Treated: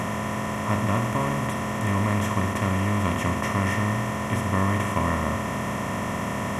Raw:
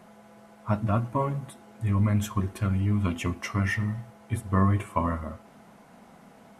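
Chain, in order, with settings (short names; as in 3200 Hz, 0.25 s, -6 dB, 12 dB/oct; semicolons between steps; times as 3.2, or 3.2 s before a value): per-bin compression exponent 0.2; gain -4.5 dB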